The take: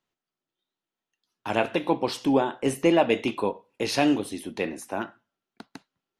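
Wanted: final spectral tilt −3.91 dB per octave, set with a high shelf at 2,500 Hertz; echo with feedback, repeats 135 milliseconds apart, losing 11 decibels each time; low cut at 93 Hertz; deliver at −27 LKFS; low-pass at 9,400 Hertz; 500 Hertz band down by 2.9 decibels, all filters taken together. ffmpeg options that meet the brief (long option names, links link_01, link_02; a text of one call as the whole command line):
ffmpeg -i in.wav -af "highpass=93,lowpass=9400,equalizer=frequency=500:width_type=o:gain=-4,highshelf=frequency=2500:gain=5.5,aecho=1:1:135|270|405:0.282|0.0789|0.0221,volume=-0.5dB" out.wav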